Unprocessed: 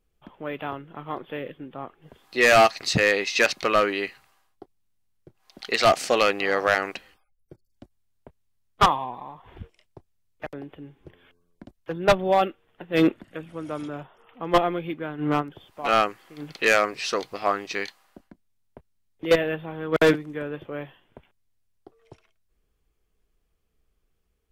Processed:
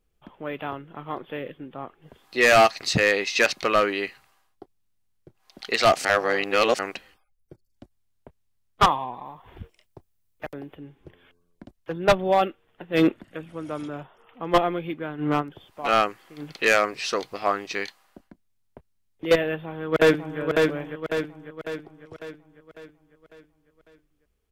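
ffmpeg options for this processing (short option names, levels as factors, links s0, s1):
-filter_complex "[0:a]asettb=1/sr,asplit=3[s0][s1][s2];[s0]atrim=end=9.254[s3];[s1]atrim=start=9.25:end=10.76,asetpts=PTS-STARTPTS,afade=t=in:d=0.004:c=qsin,afade=t=out:st=1.506:d=0.004:c=qsin,highshelf=f=12000:g=11.5[s4];[s2]atrim=start=10.756[s5];[s3][s4]acrossfade=d=0.004:c1=hsin:c2=qsin[s6];[s6][s5]acrossfade=d=0.004:c1=qsin:c2=hsin,asplit=2[s7][s8];[s8]afade=t=in:st=19.44:d=0.01,afade=t=out:st=20.4:d=0.01,aecho=0:1:550|1100|1650|2200|2750|3300|3850:0.707946|0.353973|0.176986|0.0884932|0.0442466|0.0221233|0.0110617[s9];[s7][s9]amix=inputs=2:normalize=0,asplit=3[s10][s11][s12];[s10]atrim=end=6.052[s13];[s11]atrim=start=6.048:end=6.792,asetpts=PTS-STARTPTS,areverse[s14];[s12]atrim=start=6.788[s15];[s13][s14]acrossfade=d=0.004:c1=hsin:c2=hsin[s16];[s16][s15]acrossfade=d=0.004:c1=hsin:c2=hsin"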